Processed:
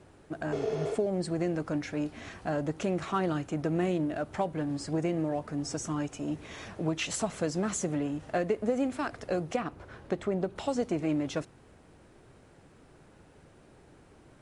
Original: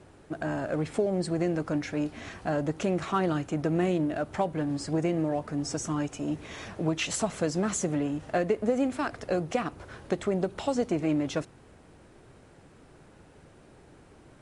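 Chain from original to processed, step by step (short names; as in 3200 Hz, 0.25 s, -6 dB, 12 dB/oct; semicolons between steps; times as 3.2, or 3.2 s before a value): 0.55–0.92 spectral repair 280–6700 Hz after; 9.56–10.56 high shelf 4400 Hz -8.5 dB; gain -2.5 dB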